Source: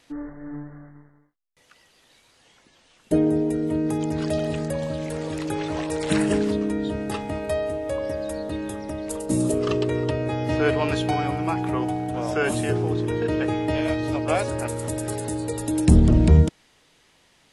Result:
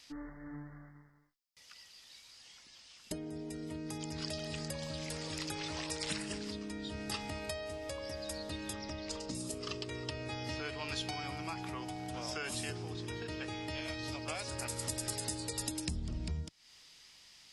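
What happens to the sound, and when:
8.73–9.35 LPF 6100 Hz 24 dB/oct
whole clip: thirty-one-band EQ 125 Hz -4 dB, 1600 Hz -3 dB, 5000 Hz +9 dB, 10000 Hz -5 dB; compressor 10:1, threshold -28 dBFS; passive tone stack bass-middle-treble 5-5-5; gain +8 dB

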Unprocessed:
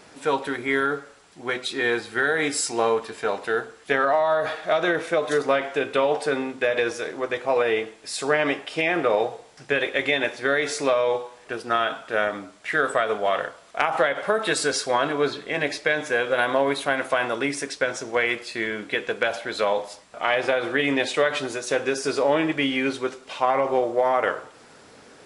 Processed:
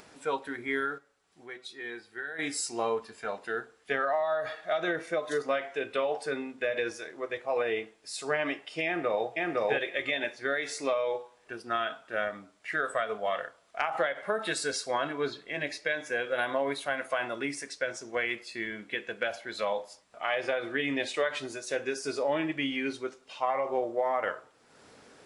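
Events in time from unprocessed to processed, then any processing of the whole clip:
0.98–2.39 resonator 380 Hz, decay 0.3 s
8.85–9.26 echo throw 0.51 s, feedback 15%, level 0 dB
whole clip: spectral noise reduction 7 dB; upward compressor, threshold -38 dBFS; gain -7.5 dB

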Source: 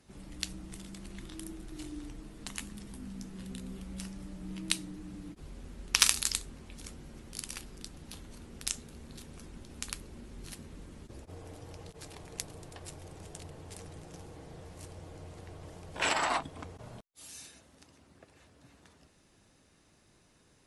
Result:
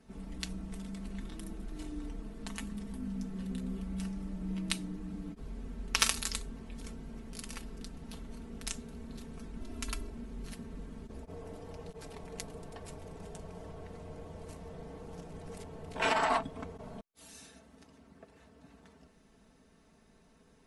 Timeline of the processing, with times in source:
9.6–10.1 comb 3 ms, depth 94%
13.4–15.94 reverse
whole clip: high shelf 2100 Hz -10 dB; comb 4.5 ms, depth 69%; gain +2 dB

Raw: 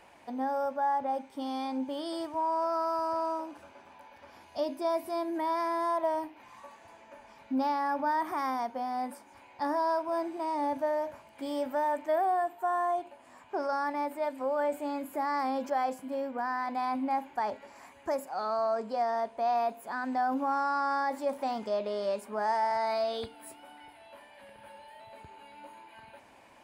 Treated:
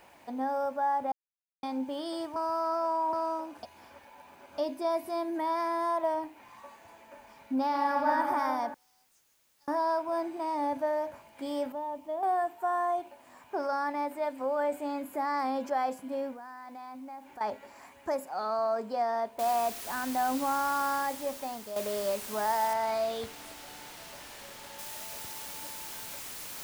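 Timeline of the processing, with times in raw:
1.12–1.63 mute
2.36–3.13 reverse
3.63–4.58 reverse
6.13–6.65 high shelf 6400 Hz -> 12000 Hz -9 dB
7.67–8.1 reverb throw, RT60 2.8 s, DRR -2.5 dB
8.74–9.68 band-pass 6500 Hz, Q 12
11.72–12.23 EQ curve 200 Hz 0 dB, 390 Hz -7 dB, 1100 Hz -7 dB, 1600 Hz -23 dB, 3000 Hz -5 dB, 6200 Hz -24 dB
16.33–17.41 compressor 3:1, threshold -46 dBFS
19.39 noise floor step -70 dB -42 dB
20.84–21.76 fade out, to -9.5 dB
22.73–24.79 high shelf 6400 Hz -11.5 dB

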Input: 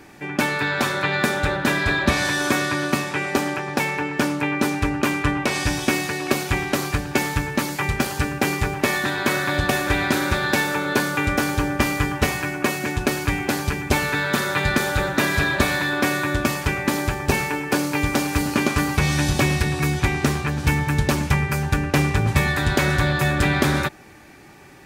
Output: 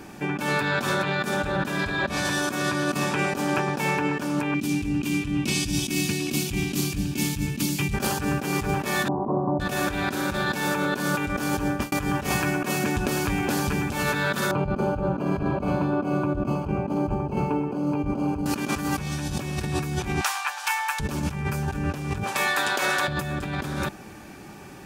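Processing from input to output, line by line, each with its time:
4.54–7.94 band shelf 880 Hz -15.5 dB 2.3 oct
9.08–9.6 rippled Chebyshev low-pass 1100 Hz, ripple 3 dB
11.43–11.92 fade out equal-power
12.7–13.92 compressor 4:1, threshold -23 dBFS
14.51–18.46 running mean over 24 samples
20.21–21 Chebyshev high-pass 810 Hz, order 4
22.23–23.08 HPF 610 Hz
whole clip: thirty-one-band EQ 200 Hz +7 dB, 2000 Hz -8 dB, 4000 Hz -3 dB; negative-ratio compressor -26 dBFS, ratio -1

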